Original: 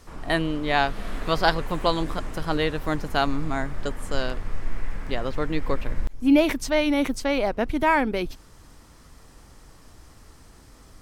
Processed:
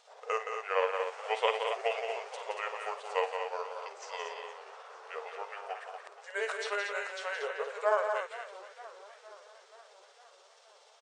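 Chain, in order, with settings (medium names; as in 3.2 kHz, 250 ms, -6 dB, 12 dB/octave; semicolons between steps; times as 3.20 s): rotating-head pitch shifter -7 st; brick-wall FIR band-pass 420–9600 Hz; on a send: multi-tap echo 52/171/233 ms -12/-7/-7 dB; on the sum: modulated delay 466 ms, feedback 63%, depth 197 cents, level -17 dB; trim -5.5 dB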